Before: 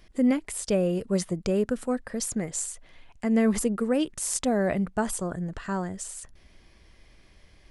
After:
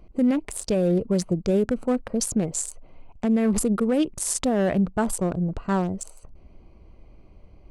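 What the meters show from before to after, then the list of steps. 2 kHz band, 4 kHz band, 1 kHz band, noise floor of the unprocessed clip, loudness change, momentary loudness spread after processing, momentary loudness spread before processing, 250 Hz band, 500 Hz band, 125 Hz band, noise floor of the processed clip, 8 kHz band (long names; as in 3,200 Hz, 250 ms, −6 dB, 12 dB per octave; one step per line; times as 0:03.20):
−0.5 dB, +1.5 dB, +3.0 dB, −57 dBFS, +3.0 dB, 6 LU, 10 LU, +3.5 dB, +2.5 dB, +5.0 dB, −51 dBFS, +2.0 dB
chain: adaptive Wiener filter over 25 samples
brickwall limiter −21 dBFS, peak gain reduction 8.5 dB
level +7 dB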